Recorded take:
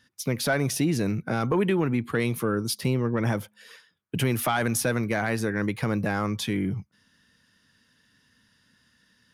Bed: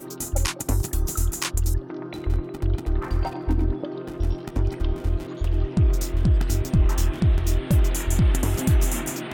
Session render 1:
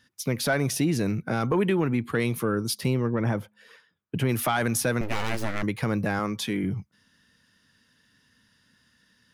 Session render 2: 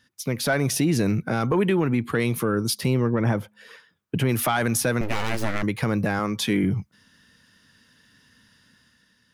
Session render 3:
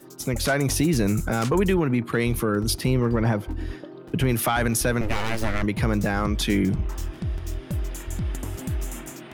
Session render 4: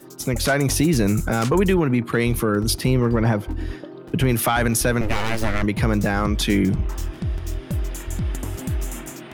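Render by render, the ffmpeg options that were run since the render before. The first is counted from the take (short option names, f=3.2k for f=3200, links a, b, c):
-filter_complex "[0:a]asettb=1/sr,asplit=3[a][b][c];[a]atrim=end=3.104[d];[b]atrim=start=3.1:end=4.29,asetpts=PTS-STARTPTS,afade=t=in:d=0.004:c=qsin,afade=t=out:st=1.186:d=0.004:c=qsin,highshelf=f=3.1k:g=-11[e];[c]atrim=start=4.286[f];[d][e]acrossfade=d=0.004:c1=hsin:c2=qsin[g];[g][f]acrossfade=d=0.004:c1=qsin:c2=hsin,asettb=1/sr,asplit=3[h][i][j];[h]atrim=end=5.014[k];[i]atrim=start=5.01:end=5.63,asetpts=PTS-STARTPTS,afade=t=in:d=0.004:c=qsin,afade=t=out:st=0.616:d=0.004:c=qsin,aeval=exprs='abs(val(0))':c=same[l];[j]atrim=start=5.626[m];[k][l]acrossfade=d=0.004:c1=hsin:c2=qsin[n];[n][m]acrossfade=d=0.004:c1=qsin:c2=hsin,asettb=1/sr,asplit=3[o][p][q];[o]atrim=end=6.194[r];[p]atrim=start=6.19:end=6.64,asetpts=PTS-STARTPTS,afade=t=in:d=0.004:c=qsin,afade=t=out:st=0.446:d=0.004:c=qsin,highpass=150[s];[q]atrim=start=6.636[t];[r][s]acrossfade=d=0.004:c1=hsin:c2=qsin[u];[u][t]acrossfade=d=0.004:c1=qsin:c2=hsin"
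-af "dynaudnorm=f=140:g=9:m=6dB,alimiter=limit=-13dB:level=0:latency=1:release=268"
-filter_complex "[1:a]volume=-9dB[a];[0:a][a]amix=inputs=2:normalize=0"
-af "volume=3dB"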